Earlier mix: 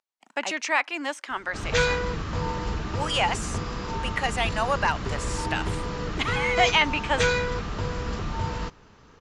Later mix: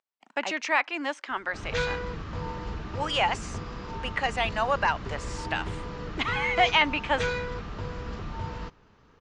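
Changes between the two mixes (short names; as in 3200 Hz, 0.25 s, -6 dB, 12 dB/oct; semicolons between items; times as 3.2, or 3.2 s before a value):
background -5.5 dB; master: add air absorption 94 m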